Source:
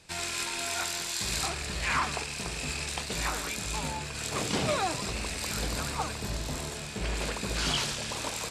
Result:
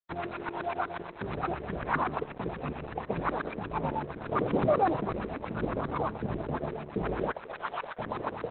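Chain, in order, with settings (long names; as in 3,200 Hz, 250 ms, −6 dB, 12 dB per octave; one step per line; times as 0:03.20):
high-pass filter 97 Hz 12 dB per octave
hum removal 257 Hz, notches 36
auto-filter low-pass saw up 8.2 Hz 300–1,600 Hz
in parallel at +2 dB: brickwall limiter −24.5 dBFS, peak gain reduction 10 dB
0:07.31–0:07.99: on the sum: three-way crossover with the lows and the highs turned down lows −23 dB, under 530 Hz, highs −14 dB, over 7,100 Hz
dead-zone distortion −43 dBFS
on a send at −21 dB: head-to-tape spacing loss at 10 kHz 20 dB + convolution reverb RT60 0.70 s, pre-delay 3 ms
on the sum: level −1.5 dB
Opus 8 kbit/s 48,000 Hz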